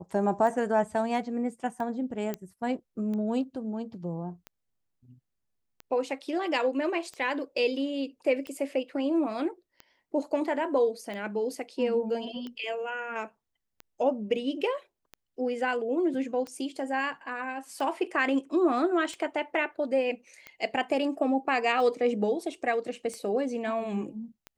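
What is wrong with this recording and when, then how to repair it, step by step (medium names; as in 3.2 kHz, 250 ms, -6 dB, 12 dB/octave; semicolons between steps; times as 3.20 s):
tick 45 rpm -26 dBFS
2.34 s: pop -18 dBFS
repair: de-click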